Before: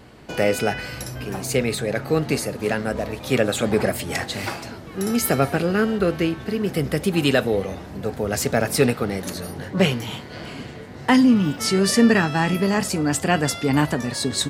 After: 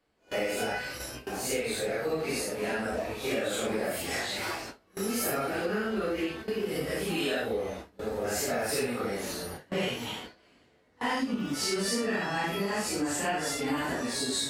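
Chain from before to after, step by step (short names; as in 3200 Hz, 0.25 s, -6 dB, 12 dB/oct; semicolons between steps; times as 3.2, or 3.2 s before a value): phase scrambler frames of 0.2 s; bell 130 Hz -12 dB 1.4 oct; gate with hold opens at -23 dBFS; compressor 6:1, threshold -23 dBFS, peak gain reduction 8.5 dB; gain -3.5 dB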